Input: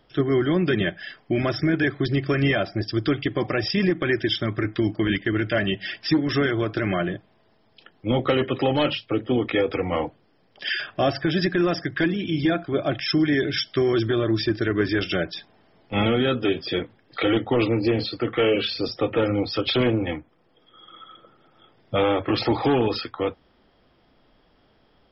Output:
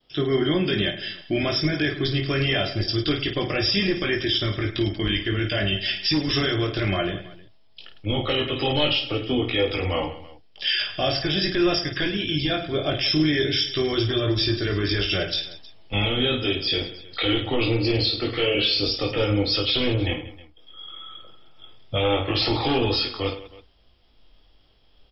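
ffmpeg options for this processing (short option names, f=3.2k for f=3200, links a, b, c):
-af "highshelf=f=2.3k:t=q:w=1.5:g=7.5,agate=range=-33dB:threshold=-53dB:ratio=3:detection=peak,asubboost=boost=5:cutoff=76,alimiter=limit=-14dB:level=0:latency=1:release=19,aecho=1:1:20|52|103.2|185.1|316.2:0.631|0.398|0.251|0.158|0.1,volume=-1.5dB"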